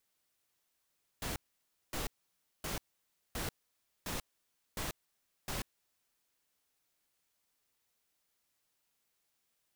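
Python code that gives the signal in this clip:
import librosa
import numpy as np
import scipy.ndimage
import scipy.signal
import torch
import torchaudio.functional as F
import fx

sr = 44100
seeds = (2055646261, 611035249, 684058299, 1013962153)

y = fx.noise_burst(sr, seeds[0], colour='pink', on_s=0.14, off_s=0.57, bursts=7, level_db=-38.0)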